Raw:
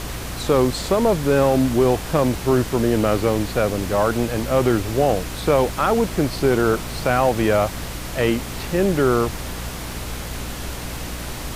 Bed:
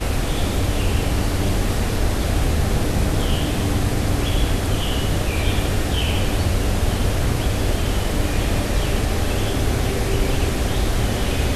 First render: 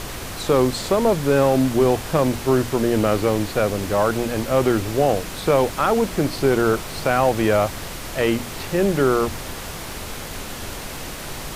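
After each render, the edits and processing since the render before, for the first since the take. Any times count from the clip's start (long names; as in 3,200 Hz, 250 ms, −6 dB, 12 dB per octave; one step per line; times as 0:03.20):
mains-hum notches 60/120/180/240/300 Hz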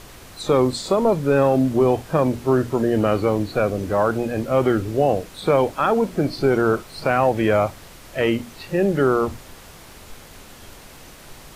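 noise reduction from a noise print 11 dB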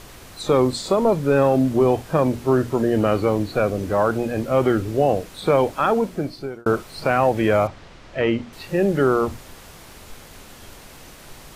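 0:05.91–0:06.66: fade out
0:07.67–0:08.53: high-frequency loss of the air 130 metres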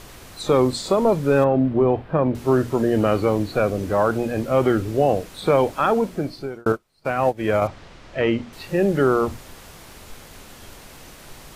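0:01.44–0:02.35: high-frequency loss of the air 430 metres
0:06.72–0:07.62: expander for the loud parts 2.5 to 1, over −34 dBFS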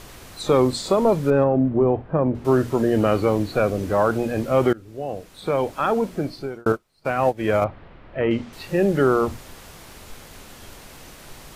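0:01.30–0:02.45: low-pass filter 1,100 Hz 6 dB per octave
0:04.73–0:06.24: fade in, from −23 dB
0:07.64–0:08.31: high-frequency loss of the air 440 metres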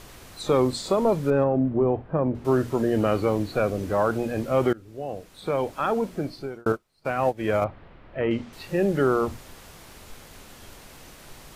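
level −3.5 dB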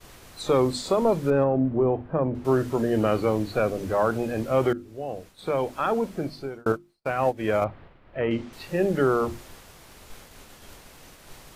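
mains-hum notches 50/100/150/200/250/300/350 Hz
downward expander −43 dBFS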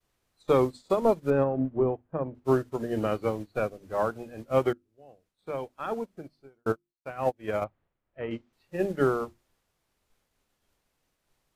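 expander for the loud parts 2.5 to 1, over −37 dBFS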